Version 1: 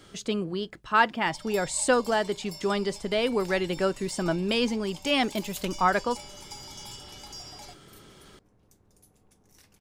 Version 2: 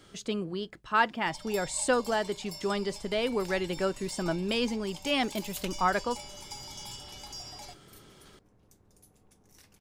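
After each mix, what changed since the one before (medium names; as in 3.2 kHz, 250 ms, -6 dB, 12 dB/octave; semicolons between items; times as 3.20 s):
speech -3.5 dB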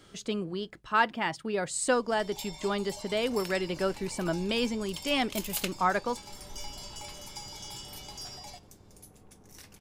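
first sound: entry +0.85 s; second sound +7.5 dB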